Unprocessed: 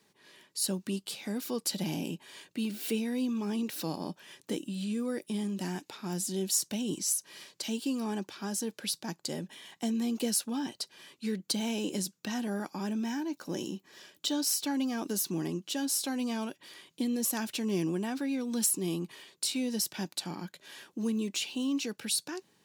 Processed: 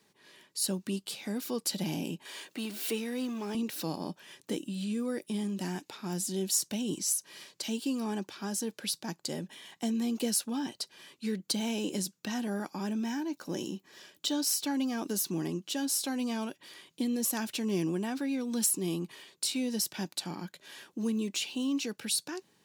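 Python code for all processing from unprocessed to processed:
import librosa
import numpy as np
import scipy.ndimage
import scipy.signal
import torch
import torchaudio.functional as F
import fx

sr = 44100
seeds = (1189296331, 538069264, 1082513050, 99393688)

y = fx.chain(x, sr, fx.law_mismatch(coded='mu'),
    fx.highpass(hz=300.0, slope=12), at=(2.25, 3.55))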